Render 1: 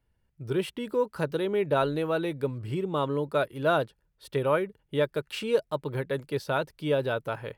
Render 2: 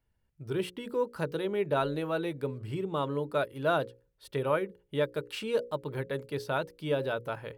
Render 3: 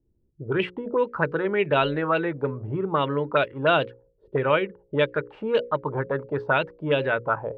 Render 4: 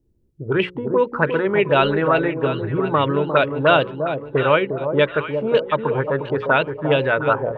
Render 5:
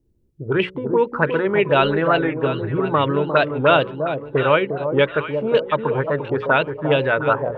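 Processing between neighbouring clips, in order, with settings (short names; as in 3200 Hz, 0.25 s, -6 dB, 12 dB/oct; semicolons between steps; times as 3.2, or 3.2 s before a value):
notches 60/120/180/240/300/360/420/480/540 Hz; gain -3 dB
envelope low-pass 340–2900 Hz up, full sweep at -25.5 dBFS; gain +6 dB
echo with dull and thin repeats by turns 0.353 s, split 910 Hz, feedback 59%, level -6.5 dB; gain +5 dB
record warp 45 rpm, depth 100 cents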